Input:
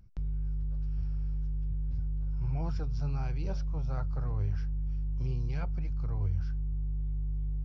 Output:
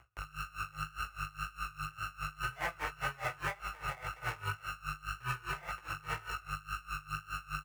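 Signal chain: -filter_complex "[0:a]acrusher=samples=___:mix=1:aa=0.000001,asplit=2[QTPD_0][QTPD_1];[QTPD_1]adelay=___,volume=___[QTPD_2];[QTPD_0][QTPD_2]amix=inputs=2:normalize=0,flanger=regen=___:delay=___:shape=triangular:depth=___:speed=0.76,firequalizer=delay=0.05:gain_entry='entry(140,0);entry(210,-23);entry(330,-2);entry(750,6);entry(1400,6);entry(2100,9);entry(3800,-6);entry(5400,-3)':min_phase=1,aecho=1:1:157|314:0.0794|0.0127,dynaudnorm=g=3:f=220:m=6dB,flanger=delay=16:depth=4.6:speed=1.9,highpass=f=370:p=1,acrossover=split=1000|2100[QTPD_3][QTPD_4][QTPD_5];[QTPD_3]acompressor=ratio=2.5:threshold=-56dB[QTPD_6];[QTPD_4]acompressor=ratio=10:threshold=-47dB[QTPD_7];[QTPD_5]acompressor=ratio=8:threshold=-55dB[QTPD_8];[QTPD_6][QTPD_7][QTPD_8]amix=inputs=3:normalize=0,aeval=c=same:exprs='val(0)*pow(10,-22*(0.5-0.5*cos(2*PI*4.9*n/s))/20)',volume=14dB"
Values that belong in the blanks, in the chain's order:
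32, 48, -6.5dB, -50, 0.9, 8.8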